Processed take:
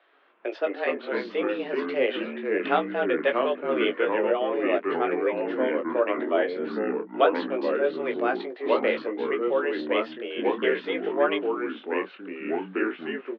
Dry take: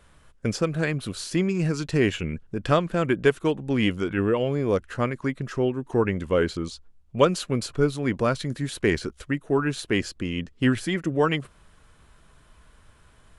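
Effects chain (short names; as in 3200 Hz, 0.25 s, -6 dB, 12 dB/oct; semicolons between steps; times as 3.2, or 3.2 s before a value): mistuned SSB +130 Hz 230–3500 Hz; doubler 19 ms -6 dB; echoes that change speed 0.125 s, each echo -3 st, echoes 3; gain -3 dB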